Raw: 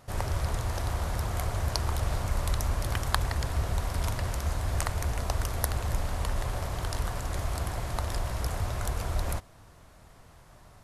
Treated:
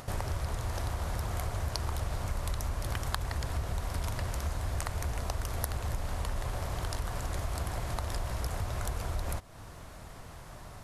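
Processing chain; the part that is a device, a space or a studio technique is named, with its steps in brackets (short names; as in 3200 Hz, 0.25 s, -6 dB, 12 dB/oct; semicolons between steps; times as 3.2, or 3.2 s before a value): upward and downward compression (upward compressor, threshold -50 dBFS; compressor 3:1, threshold -40 dBFS, peak gain reduction 15 dB); gain +6.5 dB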